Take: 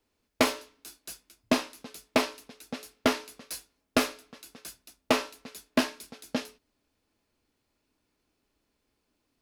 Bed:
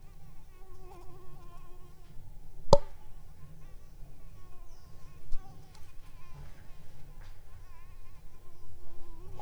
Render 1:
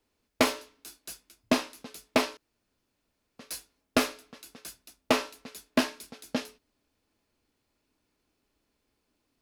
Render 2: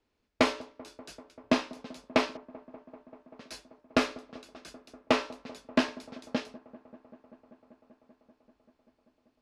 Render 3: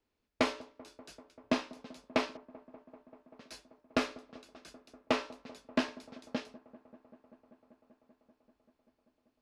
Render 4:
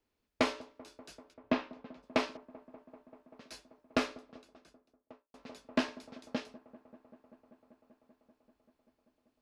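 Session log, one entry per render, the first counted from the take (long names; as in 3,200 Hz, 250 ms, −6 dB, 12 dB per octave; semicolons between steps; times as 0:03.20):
0:02.37–0:03.39: fill with room tone
high-frequency loss of the air 97 metres; delay with a low-pass on its return 194 ms, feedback 84%, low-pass 980 Hz, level −20 dB
level −5 dB
0:01.33–0:02.02: low-pass filter 3,800 Hz → 2,000 Hz; 0:03.97–0:05.34: fade out and dull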